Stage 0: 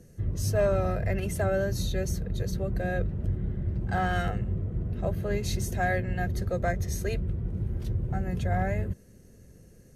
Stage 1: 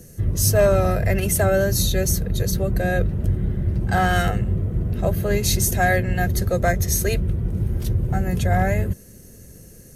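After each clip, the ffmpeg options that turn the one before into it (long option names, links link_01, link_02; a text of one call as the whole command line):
ffmpeg -i in.wav -af "aemphasis=mode=production:type=50kf,volume=8dB" out.wav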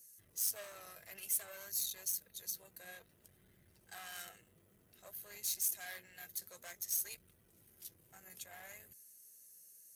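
ffmpeg -i in.wav -af "aeval=exprs='(tanh(7.08*val(0)+0.35)-tanh(0.35))/7.08':channel_layout=same,flanger=delay=0.4:depth=5.9:regen=71:speed=0.56:shape=sinusoidal,aderivative,volume=-6dB" out.wav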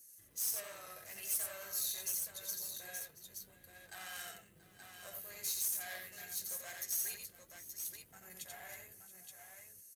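ffmpeg -i in.wav -filter_complex "[0:a]flanger=delay=3.2:depth=9.5:regen=58:speed=0.26:shape=sinusoidal,asoftclip=type=tanh:threshold=-33.5dB,asplit=2[link_01][link_02];[link_02]aecho=0:1:87|681|875:0.631|0.133|0.473[link_03];[link_01][link_03]amix=inputs=2:normalize=0,volume=5dB" out.wav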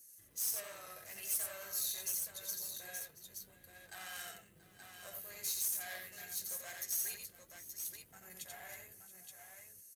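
ffmpeg -i in.wav -af anull out.wav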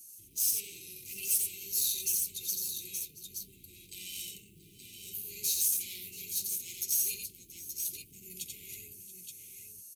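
ffmpeg -i in.wav -af "asuperstop=centerf=1000:order=20:qfactor=0.53,volume=7.5dB" out.wav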